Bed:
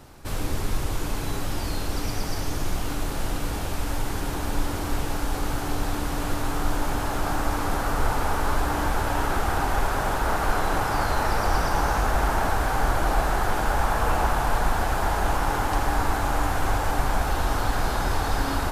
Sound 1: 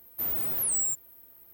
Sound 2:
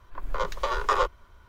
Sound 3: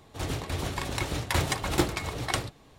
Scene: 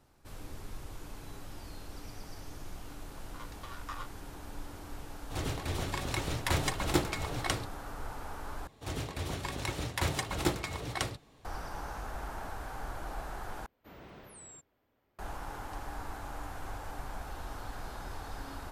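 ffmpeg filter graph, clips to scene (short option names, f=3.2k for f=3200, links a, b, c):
-filter_complex "[3:a]asplit=2[a][b];[0:a]volume=-17.5dB[c];[2:a]highpass=1.2k[d];[1:a]lowpass=3.4k[e];[c]asplit=3[f][g][h];[f]atrim=end=8.674[i];[b]atrim=end=2.78,asetpts=PTS-STARTPTS,volume=-5dB[j];[g]atrim=start=11.446:end=13.664[k];[e]atrim=end=1.53,asetpts=PTS-STARTPTS,volume=-7.5dB[l];[h]atrim=start=15.186[m];[d]atrim=end=1.48,asetpts=PTS-STARTPTS,volume=-15.5dB,afade=t=in:d=0.004:c=hsin,afade=t=out:st=1.476:d=0.004:c=hsin,adelay=3000[n];[a]atrim=end=2.78,asetpts=PTS-STARTPTS,volume=-3.5dB,afade=t=in:d=0.004:c=hsin,afade=t=out:st=2.776:d=0.004:c=hsin,adelay=5160[o];[i][j]acrossfade=d=0.004:c1=hsin:c2=hsin[p];[p][k]acrossfade=d=0.004:c1=hsin:c2=hsin[q];[q][l]acrossfade=d=0.004:c1=hsin:c2=hsin[r];[r][m]acrossfade=d=0.004:c1=hsin:c2=hsin[s];[s][n][o]amix=inputs=3:normalize=0"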